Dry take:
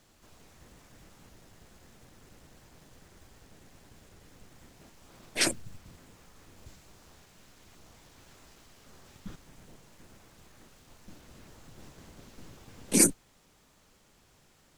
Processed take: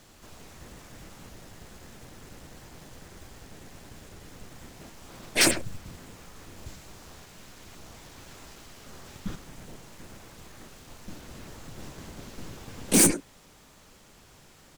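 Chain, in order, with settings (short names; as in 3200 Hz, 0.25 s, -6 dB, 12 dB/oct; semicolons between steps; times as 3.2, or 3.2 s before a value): speakerphone echo 0.1 s, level -12 dB; overloaded stage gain 23.5 dB; gain +8.5 dB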